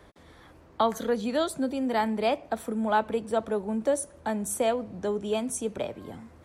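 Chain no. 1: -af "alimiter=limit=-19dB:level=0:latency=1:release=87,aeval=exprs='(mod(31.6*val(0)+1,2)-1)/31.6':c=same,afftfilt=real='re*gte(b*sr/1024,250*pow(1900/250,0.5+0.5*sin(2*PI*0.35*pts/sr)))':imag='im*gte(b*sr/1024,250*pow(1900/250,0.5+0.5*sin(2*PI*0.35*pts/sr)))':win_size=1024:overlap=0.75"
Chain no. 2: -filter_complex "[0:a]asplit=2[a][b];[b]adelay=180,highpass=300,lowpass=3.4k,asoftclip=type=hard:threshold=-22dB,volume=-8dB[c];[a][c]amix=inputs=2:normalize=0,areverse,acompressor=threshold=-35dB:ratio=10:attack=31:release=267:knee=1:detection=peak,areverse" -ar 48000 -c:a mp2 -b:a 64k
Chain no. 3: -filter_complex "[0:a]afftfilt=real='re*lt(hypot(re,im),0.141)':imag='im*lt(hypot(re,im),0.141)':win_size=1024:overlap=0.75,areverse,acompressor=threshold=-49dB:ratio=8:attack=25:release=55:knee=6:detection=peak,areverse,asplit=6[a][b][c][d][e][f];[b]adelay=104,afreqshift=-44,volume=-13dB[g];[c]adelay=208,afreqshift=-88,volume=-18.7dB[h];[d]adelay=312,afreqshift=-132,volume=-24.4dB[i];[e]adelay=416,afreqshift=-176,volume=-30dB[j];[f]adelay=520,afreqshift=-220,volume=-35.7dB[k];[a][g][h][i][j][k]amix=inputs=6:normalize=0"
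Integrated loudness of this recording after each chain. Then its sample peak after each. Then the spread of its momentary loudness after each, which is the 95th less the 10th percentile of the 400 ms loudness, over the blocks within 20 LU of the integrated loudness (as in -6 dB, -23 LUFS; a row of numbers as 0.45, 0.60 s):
-35.0, -37.5, -47.5 LUFS; -23.5, -22.0, -33.0 dBFS; 5, 4, 4 LU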